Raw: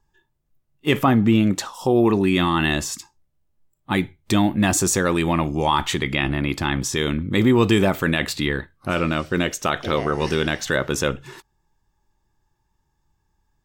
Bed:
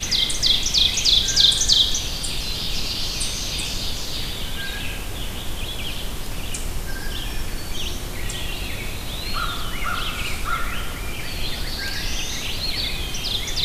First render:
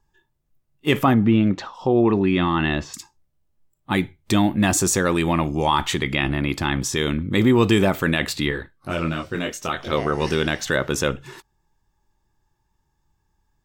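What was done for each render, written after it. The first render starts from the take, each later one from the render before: 1.14–2.94 air absorption 210 m; 8.5–9.91 detuned doubles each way 32 cents -> 15 cents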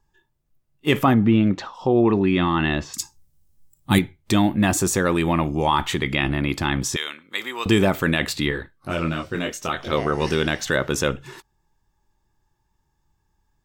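2.98–3.99 tone controls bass +9 dB, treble +14 dB; 4.57–6.03 bell 5900 Hz -4 dB 1.5 oct; 6.96–7.66 Bessel high-pass 1300 Hz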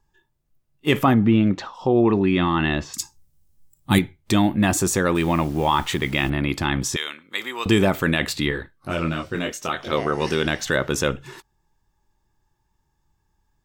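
5.15–6.3 level-crossing sampler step -39.5 dBFS; 9.52–10.45 low shelf 76 Hz -11.5 dB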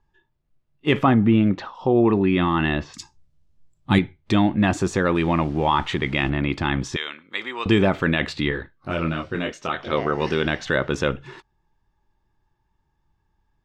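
LPF 3700 Hz 12 dB/oct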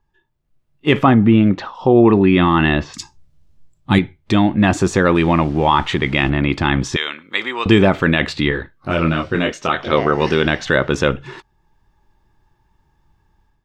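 AGC gain up to 10 dB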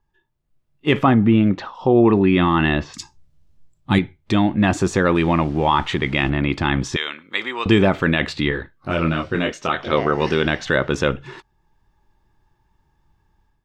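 gain -3 dB

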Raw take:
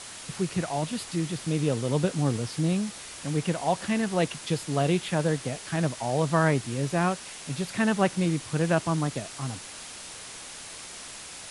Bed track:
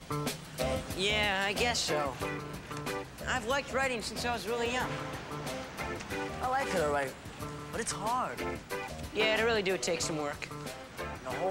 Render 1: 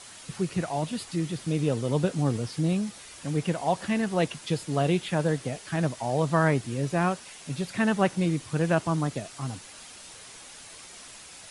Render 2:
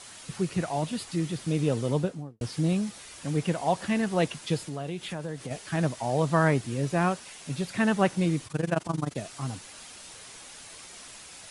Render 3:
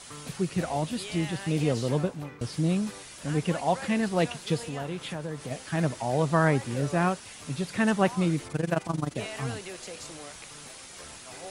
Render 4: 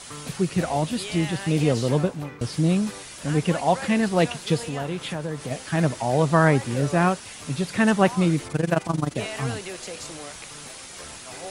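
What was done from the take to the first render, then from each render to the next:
denoiser 6 dB, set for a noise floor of -42 dBFS
1.85–2.41 studio fade out; 4.62–5.51 compressor 3:1, threshold -33 dBFS; 8.47–9.18 AM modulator 23 Hz, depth 80%
add bed track -10.5 dB
gain +5 dB

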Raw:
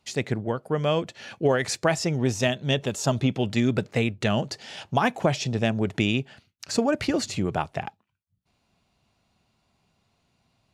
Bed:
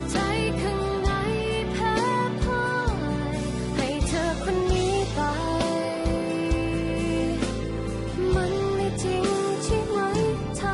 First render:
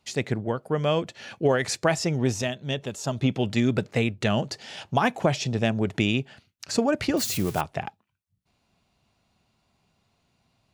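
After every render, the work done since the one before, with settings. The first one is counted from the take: 2.42–3.22 gain -5 dB; 7.17–7.61 switching spikes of -24.5 dBFS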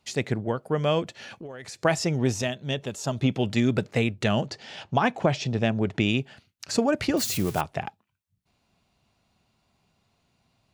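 1.18–1.85 compressor, threshold -37 dBFS; 4.46–6.06 air absorption 69 m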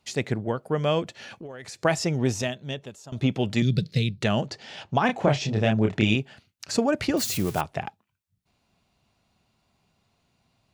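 2.44–3.12 fade out, to -19.5 dB; 3.62–4.22 EQ curve 100 Hz 0 dB, 160 Hz +11 dB, 240 Hz -5 dB, 510 Hz -8 dB, 840 Hz -25 dB, 1700 Hz -10 dB, 2800 Hz -3 dB, 4300 Hz +12 dB, 7300 Hz -7 dB, 11000 Hz 0 dB; 5.06–6.16 doubler 28 ms -3 dB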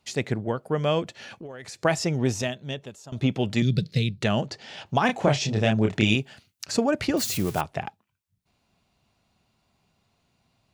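4.86–6.66 high shelf 5000 Hz +8.5 dB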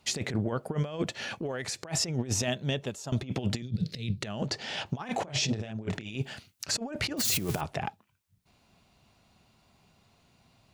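negative-ratio compressor -29 dBFS, ratio -0.5; limiter -18.5 dBFS, peak gain reduction 10.5 dB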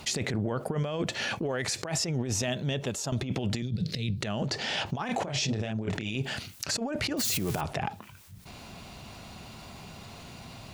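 limiter -22.5 dBFS, peak gain reduction 4 dB; fast leveller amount 50%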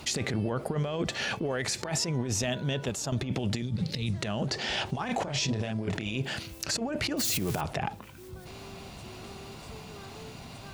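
add bed -24 dB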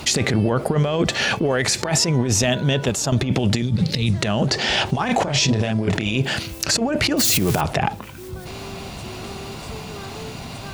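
gain +11 dB

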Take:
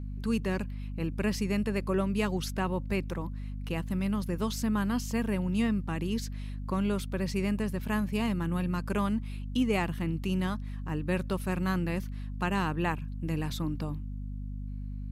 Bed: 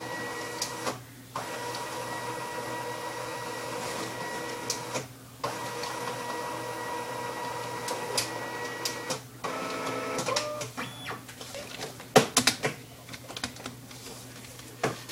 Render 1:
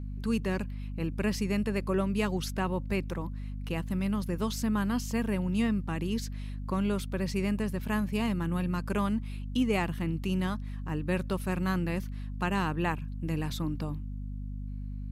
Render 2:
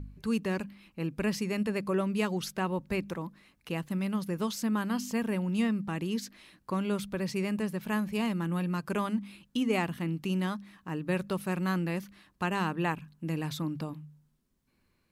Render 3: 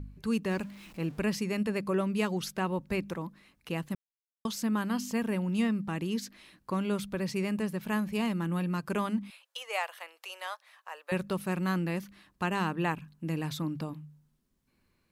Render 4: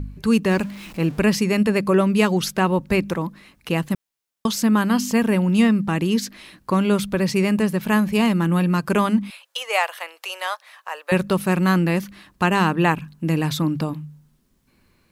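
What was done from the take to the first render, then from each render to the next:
nothing audible
de-hum 50 Hz, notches 5
0.51–1.2 zero-crossing step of -48.5 dBFS; 3.95–4.45 mute; 9.3–11.12 steep high-pass 530 Hz 48 dB/oct
gain +12 dB

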